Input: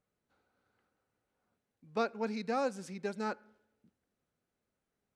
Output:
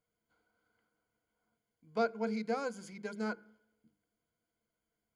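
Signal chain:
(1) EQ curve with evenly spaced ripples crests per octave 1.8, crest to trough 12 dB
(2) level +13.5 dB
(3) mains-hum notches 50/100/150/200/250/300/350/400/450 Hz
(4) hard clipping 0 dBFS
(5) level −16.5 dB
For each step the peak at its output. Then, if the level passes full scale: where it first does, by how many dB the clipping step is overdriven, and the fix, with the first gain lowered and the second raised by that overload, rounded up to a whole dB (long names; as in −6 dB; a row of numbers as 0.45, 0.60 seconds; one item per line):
−16.5, −3.0, −3.5, −3.5, −20.0 dBFS
no step passes full scale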